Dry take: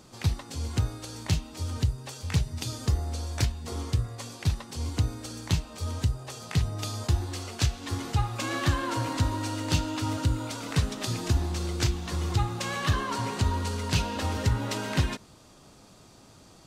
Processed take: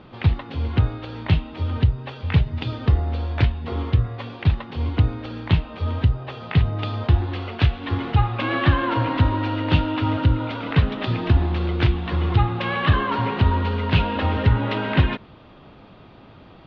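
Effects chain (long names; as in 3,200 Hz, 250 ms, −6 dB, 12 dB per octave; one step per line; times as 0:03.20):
Butterworth low-pass 3,400 Hz 36 dB per octave
level +8 dB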